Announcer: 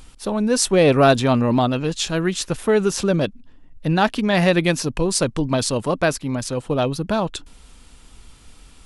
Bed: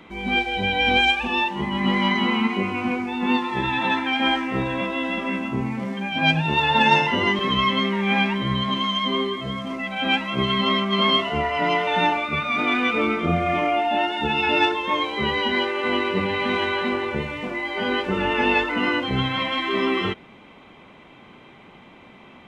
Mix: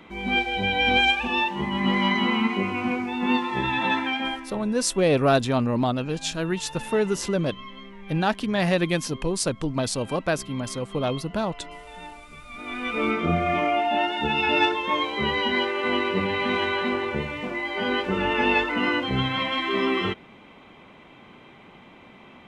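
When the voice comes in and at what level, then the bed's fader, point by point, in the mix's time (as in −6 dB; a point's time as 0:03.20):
4.25 s, −5.5 dB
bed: 0:04.05 −1.5 dB
0:04.73 −21 dB
0:12.42 −21 dB
0:13.08 −1.5 dB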